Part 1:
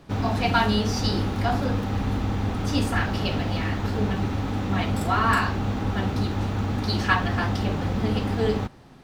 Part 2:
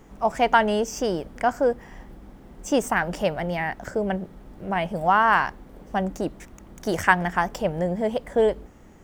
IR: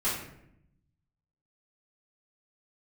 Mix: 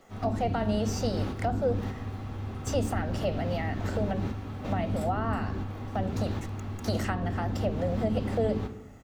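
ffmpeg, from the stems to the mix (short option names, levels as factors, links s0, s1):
-filter_complex "[0:a]volume=0.473,asplit=2[s0][s1];[s1]volume=0.168[s2];[1:a]highpass=340,aecho=1:1:1.5:0.71,adelay=10,volume=0.631,asplit=2[s3][s4];[s4]apad=whole_len=398379[s5];[s0][s5]sidechaingate=range=0.141:threshold=0.00562:ratio=16:detection=peak[s6];[2:a]atrim=start_sample=2205[s7];[s2][s7]afir=irnorm=-1:irlink=0[s8];[s6][s3][s8]amix=inputs=3:normalize=0,acrossover=split=490[s9][s10];[s10]acompressor=threshold=0.0178:ratio=6[s11];[s9][s11]amix=inputs=2:normalize=0"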